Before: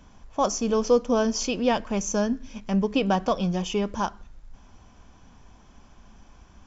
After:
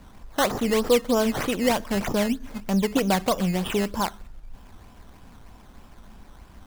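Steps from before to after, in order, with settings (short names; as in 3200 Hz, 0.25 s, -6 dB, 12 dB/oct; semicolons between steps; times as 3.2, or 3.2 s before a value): in parallel at -2 dB: compressor, threshold -31 dBFS, peak gain reduction 15 dB; on the sum: decimation with a swept rate 13×, swing 100% 3.2 Hz; gain -1 dB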